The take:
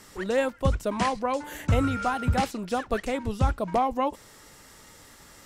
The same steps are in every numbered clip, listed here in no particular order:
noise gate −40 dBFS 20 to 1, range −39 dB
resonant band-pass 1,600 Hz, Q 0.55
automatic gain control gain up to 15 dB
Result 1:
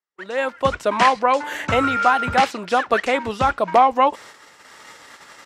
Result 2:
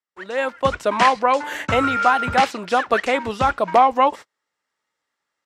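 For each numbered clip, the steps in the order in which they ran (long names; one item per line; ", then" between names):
resonant band-pass, then automatic gain control, then noise gate
noise gate, then resonant band-pass, then automatic gain control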